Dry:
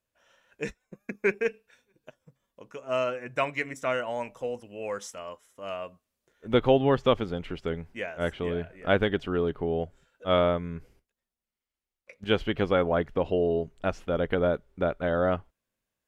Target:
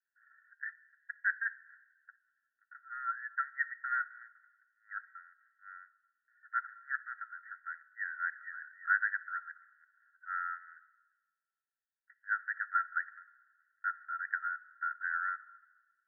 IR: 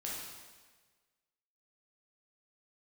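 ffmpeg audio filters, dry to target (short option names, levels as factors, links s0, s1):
-filter_complex "[0:a]asuperpass=centerf=1600:order=20:qfactor=2.7,asplit=2[s0][s1];[1:a]atrim=start_sample=2205[s2];[s1][s2]afir=irnorm=-1:irlink=0,volume=0.158[s3];[s0][s3]amix=inputs=2:normalize=0,volume=1.33"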